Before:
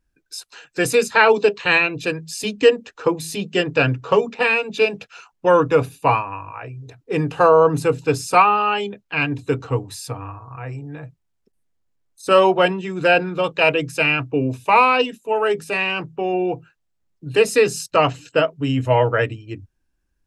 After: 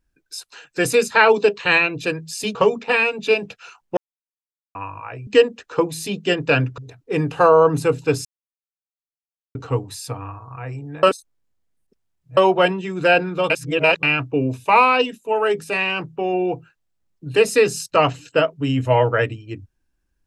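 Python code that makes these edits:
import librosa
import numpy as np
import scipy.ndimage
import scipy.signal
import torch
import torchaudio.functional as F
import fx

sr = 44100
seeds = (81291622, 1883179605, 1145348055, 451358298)

y = fx.edit(x, sr, fx.move(start_s=2.55, length_s=1.51, to_s=6.78),
    fx.silence(start_s=5.48, length_s=0.78),
    fx.silence(start_s=8.25, length_s=1.3),
    fx.reverse_span(start_s=11.03, length_s=1.34),
    fx.reverse_span(start_s=13.5, length_s=0.53), tone=tone)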